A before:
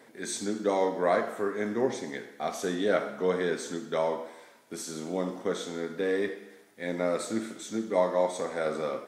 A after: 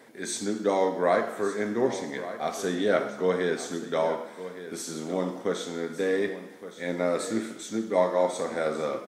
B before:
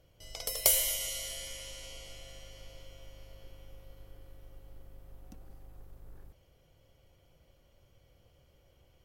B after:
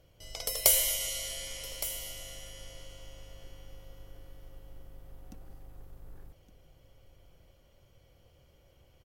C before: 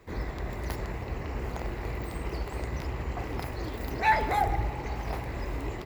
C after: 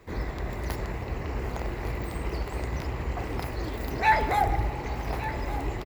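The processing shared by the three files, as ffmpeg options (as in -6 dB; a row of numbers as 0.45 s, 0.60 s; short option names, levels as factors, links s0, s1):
-af "aecho=1:1:1165:0.211,volume=1.26"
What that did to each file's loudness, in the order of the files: +2.0 LU, +1.5 LU, +2.0 LU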